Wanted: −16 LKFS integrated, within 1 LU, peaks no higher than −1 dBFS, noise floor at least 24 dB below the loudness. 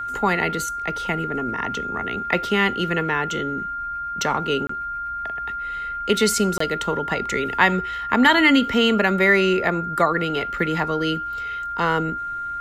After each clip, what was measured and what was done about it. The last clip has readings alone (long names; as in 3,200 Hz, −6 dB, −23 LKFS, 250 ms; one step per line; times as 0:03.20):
number of dropouts 2; longest dropout 24 ms; interfering tone 1,400 Hz; level of the tone −26 dBFS; integrated loudness −21.5 LKFS; sample peak −4.0 dBFS; target loudness −16.0 LKFS
→ repair the gap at 0:04.67/0:06.58, 24 ms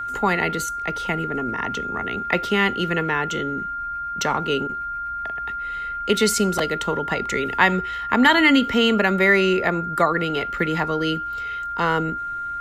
number of dropouts 0; interfering tone 1,400 Hz; level of the tone −26 dBFS
→ notch filter 1,400 Hz, Q 30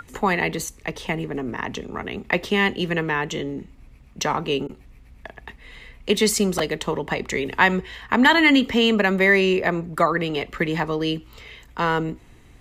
interfering tone none found; integrated loudness −22.0 LKFS; sample peak −4.0 dBFS; target loudness −16.0 LKFS
→ level +6 dB
brickwall limiter −1 dBFS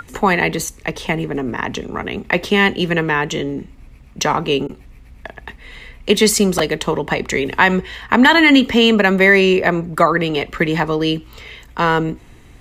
integrated loudness −16.0 LKFS; sample peak −1.0 dBFS; background noise floor −43 dBFS